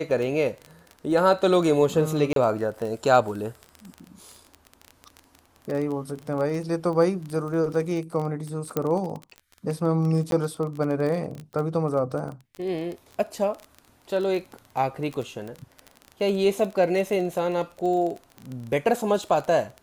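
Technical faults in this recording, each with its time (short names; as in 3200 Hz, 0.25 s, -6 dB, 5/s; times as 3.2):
crackle 21/s -29 dBFS
2.33–2.36 gap 32 ms
8.77 pop -11 dBFS
10.31–10.32 gap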